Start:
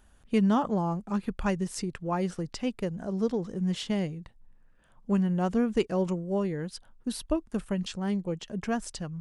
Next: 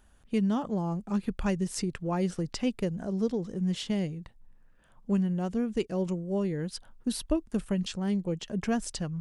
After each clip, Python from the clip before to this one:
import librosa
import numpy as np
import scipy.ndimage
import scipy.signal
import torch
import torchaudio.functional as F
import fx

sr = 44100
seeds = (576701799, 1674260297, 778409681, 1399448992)

y = fx.dynamic_eq(x, sr, hz=1100.0, q=0.77, threshold_db=-43.0, ratio=4.0, max_db=-6)
y = fx.rider(y, sr, range_db=3, speed_s=0.5)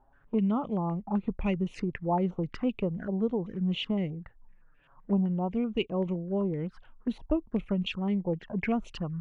y = fx.env_flanger(x, sr, rest_ms=8.1, full_db=-28.0)
y = fx.filter_held_lowpass(y, sr, hz=7.8, low_hz=840.0, high_hz=2600.0)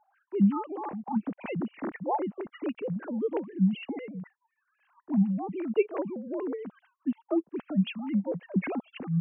y = fx.sine_speech(x, sr)